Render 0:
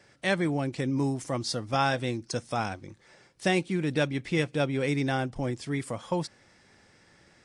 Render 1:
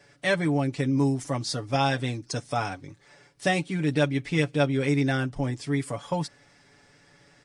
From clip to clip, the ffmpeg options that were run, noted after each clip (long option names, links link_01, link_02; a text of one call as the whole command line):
ffmpeg -i in.wav -af "aecho=1:1:7:0.72" out.wav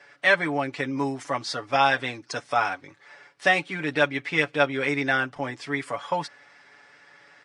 ffmpeg -i in.wav -af "bandpass=frequency=1500:width_type=q:width=0.83:csg=0,volume=8.5dB" out.wav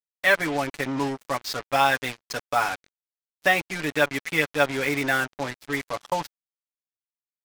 ffmpeg -i in.wav -af "acrusher=bits=4:mix=0:aa=0.5" out.wav